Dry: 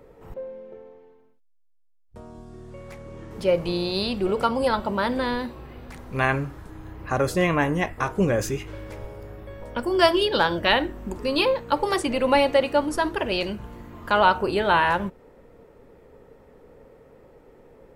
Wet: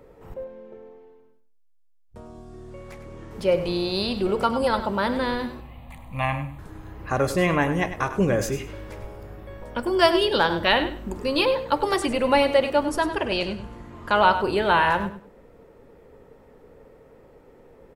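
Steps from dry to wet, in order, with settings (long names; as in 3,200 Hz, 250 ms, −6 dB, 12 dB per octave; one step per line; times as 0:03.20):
0:05.60–0:06.59: phaser with its sweep stopped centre 1,500 Hz, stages 6
0:13.03–0:14.12: low-pass filter 11,000 Hz 24 dB per octave
repeating echo 100 ms, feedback 21%, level −11.5 dB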